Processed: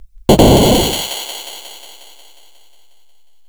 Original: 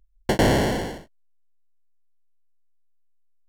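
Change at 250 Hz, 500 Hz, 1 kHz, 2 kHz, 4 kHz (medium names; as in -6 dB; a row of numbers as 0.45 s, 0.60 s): +12.5 dB, +12.5 dB, +11.0 dB, +3.5 dB, +16.5 dB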